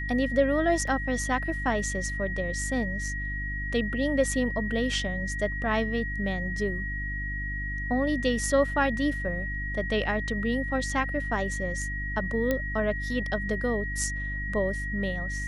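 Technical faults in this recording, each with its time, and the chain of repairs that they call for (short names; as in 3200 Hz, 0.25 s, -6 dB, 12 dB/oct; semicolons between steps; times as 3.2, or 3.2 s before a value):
hum 50 Hz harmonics 6 -34 dBFS
tone 1900 Hz -33 dBFS
0.87 gap 4.6 ms
12.51 pop -13 dBFS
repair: de-click; de-hum 50 Hz, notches 6; notch 1900 Hz, Q 30; interpolate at 0.87, 4.6 ms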